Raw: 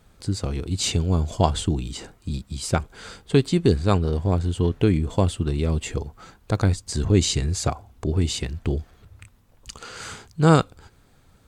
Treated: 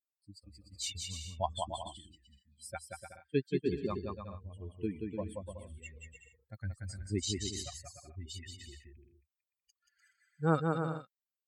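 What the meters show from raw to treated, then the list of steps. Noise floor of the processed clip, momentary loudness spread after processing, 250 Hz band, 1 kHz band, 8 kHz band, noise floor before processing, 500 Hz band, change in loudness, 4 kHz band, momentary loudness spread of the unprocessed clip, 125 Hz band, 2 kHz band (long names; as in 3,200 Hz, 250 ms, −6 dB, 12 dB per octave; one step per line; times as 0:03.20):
below −85 dBFS, 19 LU, −15.0 dB, −11.5 dB, −12.5 dB, −57 dBFS, −13.0 dB, −14.5 dB, −13.0 dB, 16 LU, −18.5 dB, −12.5 dB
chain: spectral dynamics exaggerated over time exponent 3
high-pass filter 190 Hz 6 dB per octave
bouncing-ball delay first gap 180 ms, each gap 0.65×, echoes 5
level −8 dB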